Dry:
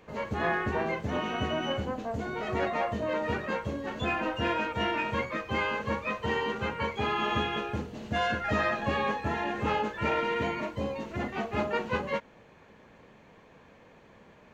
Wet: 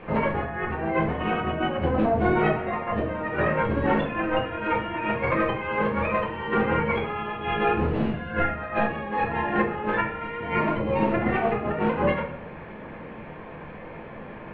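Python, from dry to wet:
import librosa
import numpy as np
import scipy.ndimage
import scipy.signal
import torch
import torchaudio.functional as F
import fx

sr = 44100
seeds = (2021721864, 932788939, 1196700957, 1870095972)

y = fx.over_compress(x, sr, threshold_db=-35.0, ratio=-0.5)
y = scipy.signal.sosfilt(scipy.signal.butter(4, 2700.0, 'lowpass', fs=sr, output='sos'), y)
y = fx.room_shoebox(y, sr, seeds[0], volume_m3=110.0, walls='mixed', distance_m=0.82)
y = F.gain(torch.from_numpy(y), 7.0).numpy()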